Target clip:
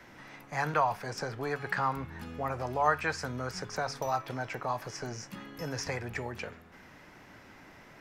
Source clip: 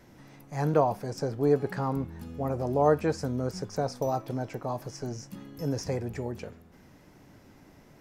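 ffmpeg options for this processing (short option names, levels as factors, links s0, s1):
-filter_complex "[0:a]equalizer=f=1800:w=0.45:g=13,bandreject=f=140.6:t=h:w=4,bandreject=f=281.2:t=h:w=4,bandreject=f=421.8:t=h:w=4,acrossover=split=120|860|6200[s0][s1][s2][s3];[s1]acompressor=threshold=0.02:ratio=6[s4];[s0][s4][s2][s3]amix=inputs=4:normalize=0,volume=0.708"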